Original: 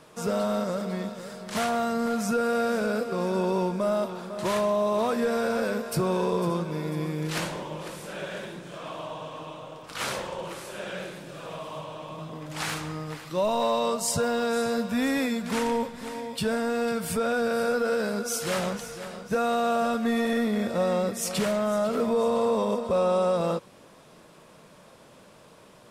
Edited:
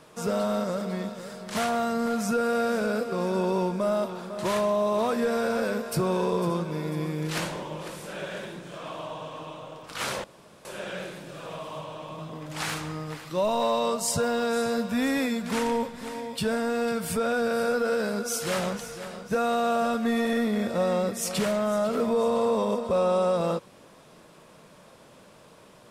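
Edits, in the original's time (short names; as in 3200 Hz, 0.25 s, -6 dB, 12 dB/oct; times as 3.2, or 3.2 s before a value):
10.24–10.65 room tone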